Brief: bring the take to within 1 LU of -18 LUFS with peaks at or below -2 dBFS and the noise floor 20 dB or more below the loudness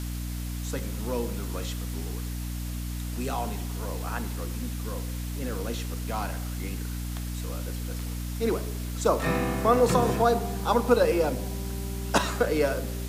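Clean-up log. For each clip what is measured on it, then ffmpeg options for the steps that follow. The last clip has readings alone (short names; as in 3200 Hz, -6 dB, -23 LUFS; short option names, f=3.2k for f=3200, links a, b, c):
hum 60 Hz; harmonics up to 300 Hz; hum level -30 dBFS; noise floor -33 dBFS; noise floor target -49 dBFS; loudness -29.0 LUFS; peak -8.0 dBFS; loudness target -18.0 LUFS
-> -af "bandreject=f=60:t=h:w=6,bandreject=f=120:t=h:w=6,bandreject=f=180:t=h:w=6,bandreject=f=240:t=h:w=6,bandreject=f=300:t=h:w=6"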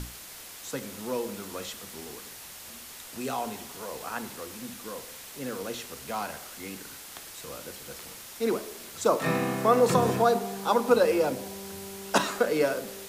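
hum none; noise floor -45 dBFS; noise floor target -49 dBFS
-> -af "afftdn=nr=6:nf=-45"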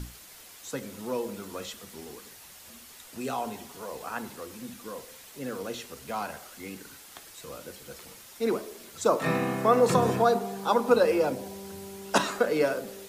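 noise floor -50 dBFS; loudness -28.0 LUFS; peak -9.0 dBFS; loudness target -18.0 LUFS
-> -af "volume=10dB,alimiter=limit=-2dB:level=0:latency=1"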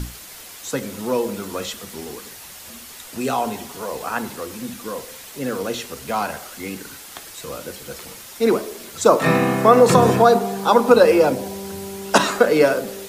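loudness -18.5 LUFS; peak -2.0 dBFS; noise floor -40 dBFS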